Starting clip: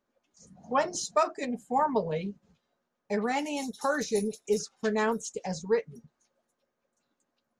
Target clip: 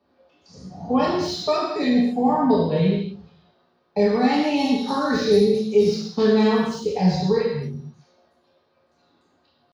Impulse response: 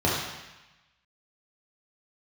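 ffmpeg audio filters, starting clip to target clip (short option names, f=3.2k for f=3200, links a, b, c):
-filter_complex "[0:a]atempo=0.78,acrossover=split=330|3100[a][b][c];[a]flanger=delay=3.4:depth=8.7:regen=-54:speed=0.49:shape=triangular[d];[b]acompressor=threshold=-40dB:ratio=4[e];[c]asoftclip=type=tanh:threshold=-39dB[f];[d][e][f]amix=inputs=3:normalize=0,highshelf=f=5.6k:t=q:w=3:g=-6.5[g];[1:a]atrim=start_sample=2205,afade=t=out:st=0.33:d=0.01,atrim=end_sample=14994[h];[g][h]afir=irnorm=-1:irlink=0"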